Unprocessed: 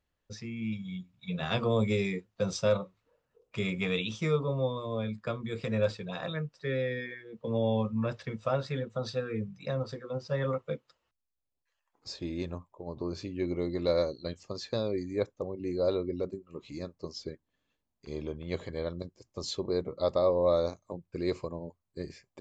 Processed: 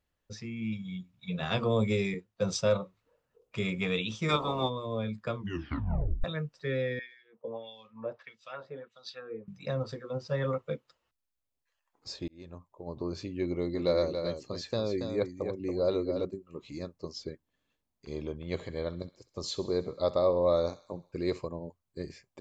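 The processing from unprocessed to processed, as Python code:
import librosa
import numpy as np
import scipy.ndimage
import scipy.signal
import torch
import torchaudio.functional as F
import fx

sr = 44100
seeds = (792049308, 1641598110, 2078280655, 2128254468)

y = fx.band_widen(x, sr, depth_pct=40, at=(2.14, 2.61))
y = fx.spec_clip(y, sr, under_db=24, at=(4.28, 4.68), fade=0.02)
y = fx.filter_lfo_bandpass(y, sr, shape='sine', hz=1.6, low_hz=540.0, high_hz=4900.0, q=1.9, at=(6.99, 9.48))
y = fx.echo_single(y, sr, ms=280, db=-7.0, at=(13.46, 16.25))
y = fx.echo_thinned(y, sr, ms=65, feedback_pct=63, hz=850.0, wet_db=-15.5, at=(18.45, 21.39))
y = fx.edit(y, sr, fx.tape_stop(start_s=5.35, length_s=0.89),
    fx.fade_in_span(start_s=12.28, length_s=0.62), tone=tone)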